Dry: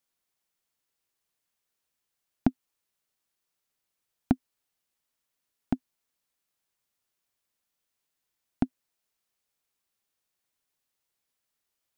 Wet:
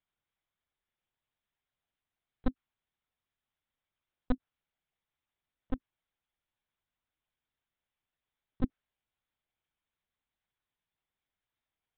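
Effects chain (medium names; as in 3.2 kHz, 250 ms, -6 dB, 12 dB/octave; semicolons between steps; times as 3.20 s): careless resampling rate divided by 8×, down filtered, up zero stuff; LPC vocoder at 8 kHz pitch kept; dynamic bell 1.4 kHz, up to +8 dB, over -55 dBFS, Q 1.2; trim -2.5 dB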